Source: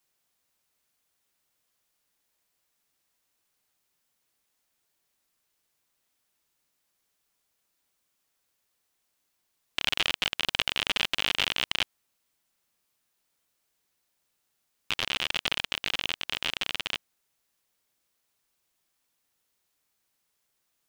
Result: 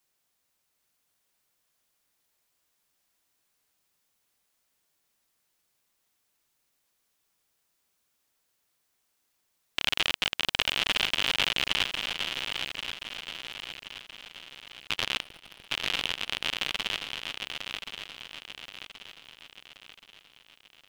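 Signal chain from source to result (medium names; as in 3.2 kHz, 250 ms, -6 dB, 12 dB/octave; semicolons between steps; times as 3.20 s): 15.21–15.67 s: median filter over 41 samples; shuffle delay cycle 1077 ms, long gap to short 3:1, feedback 45%, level -6.5 dB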